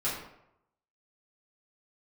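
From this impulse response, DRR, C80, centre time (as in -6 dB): -9.5 dB, 6.0 dB, 47 ms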